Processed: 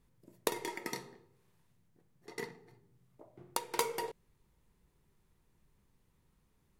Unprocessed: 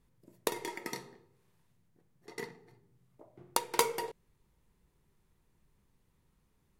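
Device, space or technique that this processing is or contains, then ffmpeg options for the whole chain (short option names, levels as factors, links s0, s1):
clipper into limiter: -af "asoftclip=type=hard:threshold=0.447,alimiter=limit=0.251:level=0:latency=1:release=265"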